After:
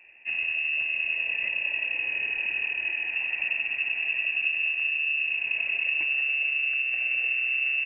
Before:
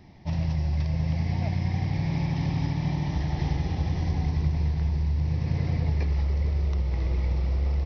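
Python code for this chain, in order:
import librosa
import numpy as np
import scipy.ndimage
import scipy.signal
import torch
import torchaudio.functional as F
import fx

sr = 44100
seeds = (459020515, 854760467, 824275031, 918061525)

y = fx.freq_invert(x, sr, carrier_hz=2700)
y = fx.peak_eq(y, sr, hz=1900.0, db=4.0, octaves=0.92)
y = F.gain(torch.from_numpy(y), -5.5).numpy()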